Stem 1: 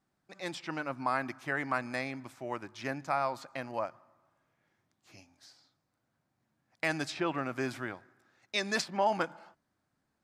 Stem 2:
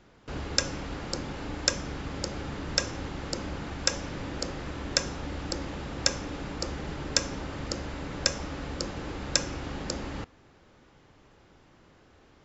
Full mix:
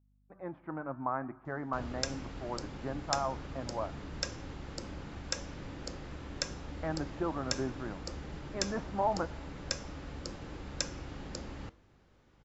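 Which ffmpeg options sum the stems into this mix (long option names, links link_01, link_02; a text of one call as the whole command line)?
ffmpeg -i stem1.wav -i stem2.wav -filter_complex "[0:a]agate=range=-19dB:threshold=-56dB:ratio=16:detection=peak,lowpass=frequency=1300:width=0.5412,lowpass=frequency=1300:width=1.3066,volume=2.5dB[link_01];[1:a]adelay=1450,volume=-5dB[link_02];[link_01][link_02]amix=inputs=2:normalize=0,lowshelf=frequency=160:gain=4.5,flanger=delay=3.9:depth=5.6:regen=-88:speed=0.74:shape=triangular,aeval=exprs='val(0)+0.000398*(sin(2*PI*50*n/s)+sin(2*PI*2*50*n/s)/2+sin(2*PI*3*50*n/s)/3+sin(2*PI*4*50*n/s)/4+sin(2*PI*5*50*n/s)/5)':channel_layout=same" out.wav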